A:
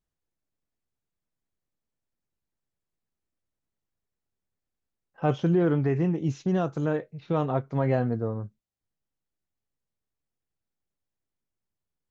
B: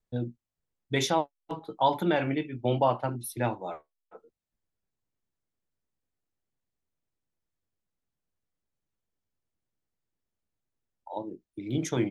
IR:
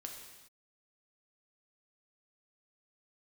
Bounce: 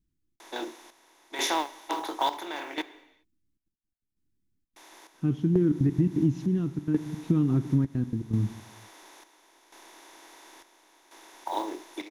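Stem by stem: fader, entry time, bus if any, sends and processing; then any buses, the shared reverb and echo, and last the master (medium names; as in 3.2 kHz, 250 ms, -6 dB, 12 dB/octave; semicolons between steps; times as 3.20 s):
-2.5 dB, 0.00 s, send -4.5 dB, trance gate "xxxx.x.x.xxx" 168 bpm -24 dB; peaking EQ 670 Hz -11 dB 1.5 oct
-2.0 dB, 0.40 s, muted 2.82–4.76 s, send -10 dB, spectral levelling over time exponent 0.4; high-pass 600 Hz 24 dB/octave; modulation noise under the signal 29 dB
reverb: on, pre-delay 3 ms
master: resonant low shelf 420 Hz +10 dB, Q 3; square tremolo 0.72 Hz, depth 65%, duty 65%; compression 6:1, threshold -20 dBFS, peak gain reduction 9.5 dB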